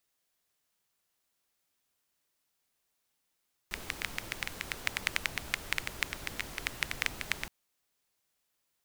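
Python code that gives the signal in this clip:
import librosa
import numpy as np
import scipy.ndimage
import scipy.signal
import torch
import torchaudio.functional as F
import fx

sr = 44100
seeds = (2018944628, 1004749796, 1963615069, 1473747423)

y = fx.rain(sr, seeds[0], length_s=3.77, drops_per_s=9.3, hz=2100.0, bed_db=-6)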